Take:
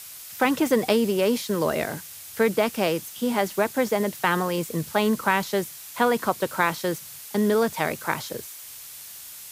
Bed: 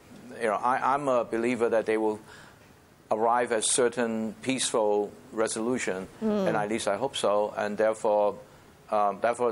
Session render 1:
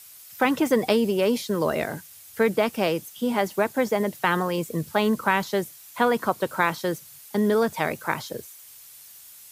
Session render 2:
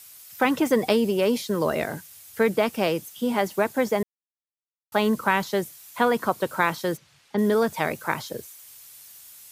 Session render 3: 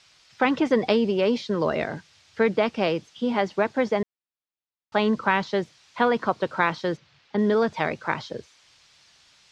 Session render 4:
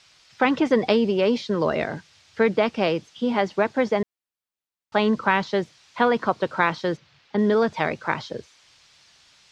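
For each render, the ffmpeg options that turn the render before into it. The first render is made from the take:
ffmpeg -i in.wav -af "afftdn=noise_reduction=8:noise_floor=-41" out.wav
ffmpeg -i in.wav -filter_complex "[0:a]asplit=3[link_01][link_02][link_03];[link_01]afade=type=out:start_time=6.96:duration=0.02[link_04];[link_02]lowpass=3500,afade=type=in:start_time=6.96:duration=0.02,afade=type=out:start_time=7.37:duration=0.02[link_05];[link_03]afade=type=in:start_time=7.37:duration=0.02[link_06];[link_04][link_05][link_06]amix=inputs=3:normalize=0,asplit=3[link_07][link_08][link_09];[link_07]atrim=end=4.03,asetpts=PTS-STARTPTS,afade=type=out:start_time=4.026:duration=0.004:curve=hsin[link_10];[link_08]atrim=start=4.03:end=4.92,asetpts=PTS-STARTPTS,volume=0[link_11];[link_09]atrim=start=4.92,asetpts=PTS-STARTPTS,afade=type=in:duration=0.004:curve=hsin[link_12];[link_10][link_11][link_12]concat=n=3:v=0:a=1" out.wav
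ffmpeg -i in.wav -af "lowpass=frequency=5100:width=0.5412,lowpass=frequency=5100:width=1.3066" out.wav
ffmpeg -i in.wav -af "volume=1.5dB" out.wav

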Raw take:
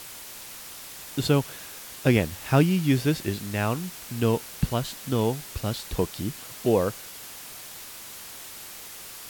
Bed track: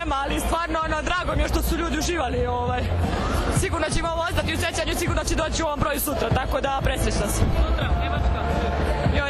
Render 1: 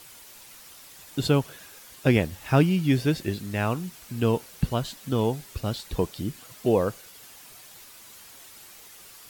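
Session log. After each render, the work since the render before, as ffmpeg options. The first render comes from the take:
ffmpeg -i in.wav -af "afftdn=noise_reduction=8:noise_floor=-42" out.wav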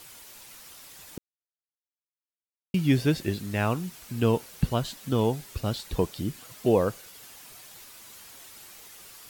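ffmpeg -i in.wav -filter_complex "[0:a]asplit=3[link_01][link_02][link_03];[link_01]atrim=end=1.18,asetpts=PTS-STARTPTS,afade=type=out:start_time=1.176:duration=0.004:curve=hsin[link_04];[link_02]atrim=start=1.18:end=2.74,asetpts=PTS-STARTPTS,volume=0[link_05];[link_03]atrim=start=2.74,asetpts=PTS-STARTPTS,afade=type=in:duration=0.004:curve=hsin[link_06];[link_04][link_05][link_06]concat=n=3:v=0:a=1" out.wav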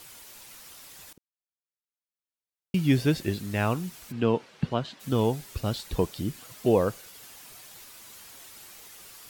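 ffmpeg -i in.wav -filter_complex "[0:a]asplit=3[link_01][link_02][link_03];[link_01]afade=type=out:start_time=4.11:duration=0.02[link_04];[link_02]highpass=140,lowpass=3500,afade=type=in:start_time=4.11:duration=0.02,afade=type=out:start_time=4.99:duration=0.02[link_05];[link_03]afade=type=in:start_time=4.99:duration=0.02[link_06];[link_04][link_05][link_06]amix=inputs=3:normalize=0,asplit=2[link_07][link_08];[link_07]atrim=end=1.13,asetpts=PTS-STARTPTS,afade=type=out:start_time=1.126:duration=0.004:curve=hsin:silence=0.0841395[link_09];[link_08]atrim=start=1.13,asetpts=PTS-STARTPTS,afade=type=in:duration=1.63:silence=0.0841395[link_10];[link_09][link_10]concat=n=2:v=0:a=1" out.wav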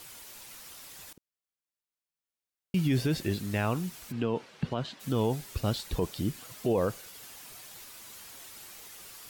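ffmpeg -i in.wav -af "alimiter=limit=-18.5dB:level=0:latency=1:release=30" out.wav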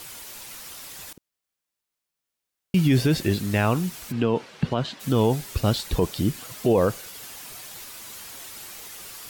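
ffmpeg -i in.wav -af "volume=7.5dB" out.wav

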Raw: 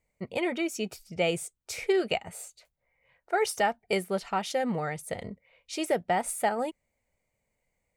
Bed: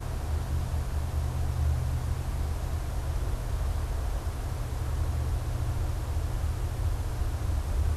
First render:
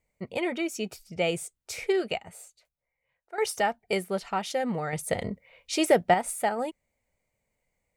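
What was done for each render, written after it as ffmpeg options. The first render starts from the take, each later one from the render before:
ffmpeg -i in.wav -filter_complex "[0:a]asplit=4[link_01][link_02][link_03][link_04];[link_01]atrim=end=3.38,asetpts=PTS-STARTPTS,afade=type=out:start_time=1.89:duration=1.49:curve=qua:silence=0.237137[link_05];[link_02]atrim=start=3.38:end=4.932,asetpts=PTS-STARTPTS,afade=type=in:duration=0.004:curve=hsin:silence=0.237137[link_06];[link_03]atrim=start=4.928:end=6.142,asetpts=PTS-STARTPTS,volume=6.5dB[link_07];[link_04]atrim=start=6.138[link_08];[link_05][link_06]concat=n=2:v=0:a=1[link_09];[link_09][link_07]acrossfade=duration=0.004:curve1=hsin:curve2=hsin[link_10];[link_10][link_08]acrossfade=duration=0.004:curve1=hsin:curve2=hsin" out.wav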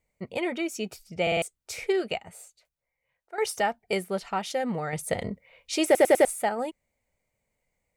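ffmpeg -i in.wav -filter_complex "[0:a]asplit=9[link_01][link_02][link_03][link_04][link_05][link_06][link_07][link_08][link_09];[link_01]atrim=end=1.272[link_10];[link_02]atrim=start=1.218:end=1.272[link_11];[link_03]atrim=start=1.218:end=1.272[link_12];[link_04]atrim=start=1.218:end=1.272[link_13];[link_05]atrim=start=1.418:end=5.952[link_14];[link_06]atrim=start=5.848:end=5.952[link_15];[link_07]atrim=start=5.848:end=5.952[link_16];[link_08]atrim=start=5.848:end=5.952[link_17];[link_09]atrim=start=6.248[link_18];[link_10][link_11]acrossfade=duration=0.004:curve1=hsin:curve2=hsin[link_19];[link_19][link_12]acrossfade=duration=0.004:curve1=hsin:curve2=hsin[link_20];[link_20][link_13]acrossfade=duration=0.004:curve1=hsin:curve2=hsin[link_21];[link_21][link_14]acrossfade=duration=0.004:curve1=hsin:curve2=hsin[link_22];[link_22][link_15]acrossfade=duration=0.004:curve1=hsin:curve2=hsin[link_23];[link_23][link_16]acrossfade=duration=0.004:curve1=hsin:curve2=hsin[link_24];[link_24][link_17]acrossfade=duration=0.004:curve1=hsin:curve2=hsin[link_25];[link_25][link_18]acrossfade=duration=0.004:curve1=hsin:curve2=hsin" out.wav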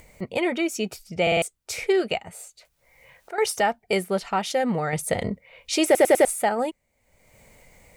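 ffmpeg -i in.wav -filter_complex "[0:a]asplit=2[link_01][link_02];[link_02]alimiter=limit=-20dB:level=0:latency=1:release=22,volume=-1.5dB[link_03];[link_01][link_03]amix=inputs=2:normalize=0,acompressor=mode=upward:threshold=-35dB:ratio=2.5" out.wav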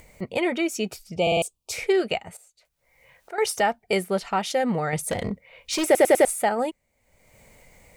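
ffmpeg -i in.wav -filter_complex "[0:a]asettb=1/sr,asplit=3[link_01][link_02][link_03];[link_01]atrim=end=1.164[link_04];[link_02]atrim=start=1.16:end=1.72,asetpts=PTS-STARTPTS,afade=type=in:duration=0.004:curve=qsin,afade=type=out:start_time=0.556:duration=0.004:curve=qsin,asuperstop=centerf=1700:order=8:qfactor=1.4[link_05];[link_03]atrim=start=1.716[link_06];[link_04][link_05]acrossfade=duration=0.004:curve1=hsin:curve2=qsin[link_07];[link_07][link_06]acrossfade=duration=0.004:curve1=qsin:curve2=hsin,asettb=1/sr,asplit=3[link_08][link_09][link_10];[link_08]atrim=end=5.114[link_11];[link_09]atrim=start=5.11:end=5.86,asetpts=PTS-STARTPTS,afade=type=in:duration=0.004:curve=qsin,afade=type=out:start_time=0.746:duration=0.004:curve=qsin,asoftclip=type=hard:threshold=-21dB[link_12];[link_10]atrim=start=5.856[link_13];[link_11][link_12]acrossfade=duration=0.004:curve1=hsin:curve2=qsin[link_14];[link_14][link_13]acrossfade=duration=0.004:curve1=qsin:curve2=hsin,asplit=2[link_15][link_16];[link_15]atrim=end=2.37,asetpts=PTS-STARTPTS,afade=type=out:start_time=2.366:duration=0.004:curve=hsin:silence=0.188365[link_17];[link_16]atrim=start=2.37,asetpts=PTS-STARTPTS,afade=type=in:duration=1.16:silence=0.188365[link_18];[link_17][link_18]concat=n=2:v=0:a=1" out.wav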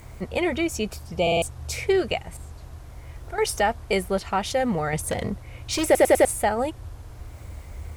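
ffmpeg -i in.wav -i bed.wav -filter_complex "[1:a]volume=-9.5dB[link_01];[0:a][link_01]amix=inputs=2:normalize=0" out.wav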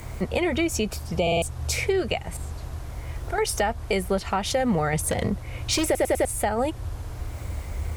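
ffmpeg -i in.wav -filter_complex "[0:a]acrossover=split=150[link_01][link_02];[link_02]acompressor=threshold=-25dB:ratio=4[link_03];[link_01][link_03]amix=inputs=2:normalize=0,asplit=2[link_04][link_05];[link_05]alimiter=limit=-23.5dB:level=0:latency=1:release=368,volume=1dB[link_06];[link_04][link_06]amix=inputs=2:normalize=0" out.wav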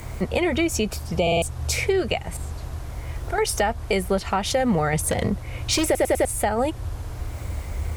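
ffmpeg -i in.wav -af "volume=2dB" out.wav

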